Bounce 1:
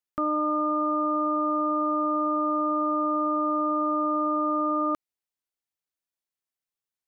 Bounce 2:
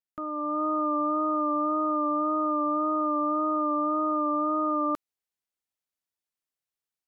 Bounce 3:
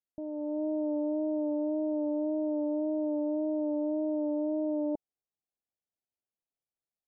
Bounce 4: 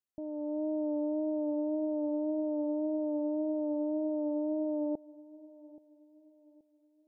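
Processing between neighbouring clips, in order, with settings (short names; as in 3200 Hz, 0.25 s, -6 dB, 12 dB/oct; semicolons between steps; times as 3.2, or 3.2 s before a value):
AGC gain up to 7.5 dB; vibrato 1.8 Hz 31 cents; gain -8.5 dB
steep low-pass 860 Hz 96 dB/oct; gain -1 dB
darkening echo 0.827 s, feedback 42%, low-pass 870 Hz, level -19 dB; gain -1.5 dB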